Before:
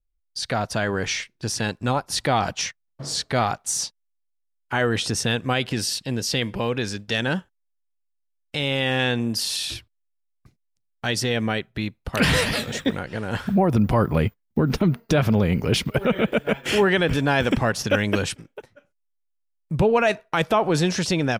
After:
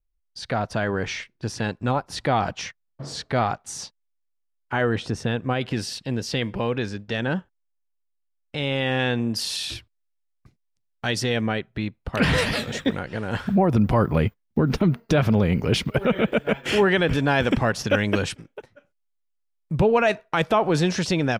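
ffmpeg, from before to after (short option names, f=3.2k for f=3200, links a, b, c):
-af "asetnsamples=n=441:p=0,asendcmd='4.96 lowpass f 1200;5.61 lowpass f 2700;6.86 lowpass f 1600;8.58 lowpass f 2700;9.36 lowpass f 6100;11.41 lowpass f 2500;12.38 lowpass f 5600',lowpass=f=2.2k:p=1"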